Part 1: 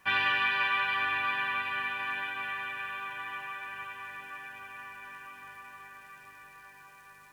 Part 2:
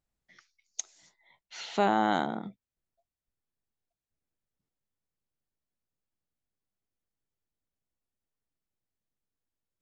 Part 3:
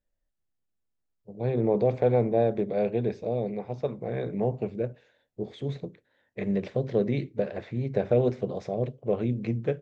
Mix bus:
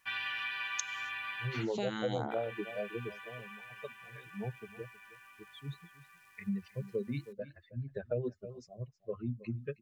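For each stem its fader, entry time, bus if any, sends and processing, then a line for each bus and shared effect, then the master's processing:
+1.0 dB, 0.00 s, muted 0:01.63–0:02.31, no send, no echo send, guitar amp tone stack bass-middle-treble 5-5-5
−2.0 dB, 0.00 s, no send, no echo send, parametric band 2,800 Hz +7.5 dB 2.8 octaves; phaser with staggered stages 0.91 Hz
−1.0 dB, 0.00 s, no send, echo send −18.5 dB, spectral dynamics exaggerated over time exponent 3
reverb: not used
echo: single-tap delay 317 ms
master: downward compressor 2.5 to 1, threshold −33 dBFS, peak gain reduction 8 dB

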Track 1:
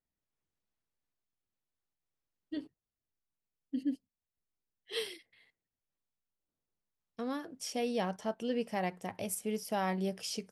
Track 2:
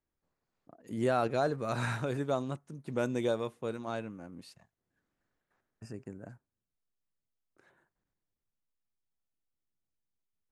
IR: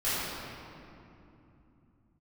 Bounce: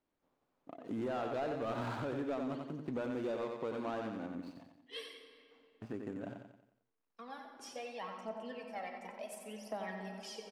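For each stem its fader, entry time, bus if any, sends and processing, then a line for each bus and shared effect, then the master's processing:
−18.5 dB, 0.00 s, send −15 dB, echo send −7.5 dB, reverb reduction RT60 1.1 s; Butterworth high-pass 170 Hz 72 dB per octave; phase shifter 0.72 Hz, delay 2.2 ms, feedback 70%
−1.0 dB, 0.00 s, no send, echo send −7 dB, running median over 25 samples; parametric band 270 Hz +6 dB 0.43 octaves; downward compressor, threshold −33 dBFS, peak gain reduction 9.5 dB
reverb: on, RT60 2.9 s, pre-delay 4 ms
echo: repeating echo 90 ms, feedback 45%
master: mid-hump overdrive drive 17 dB, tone 2,500 Hz, clips at −24 dBFS; downward compressor 1.5 to 1, threshold −40 dBFS, peak gain reduction 4 dB

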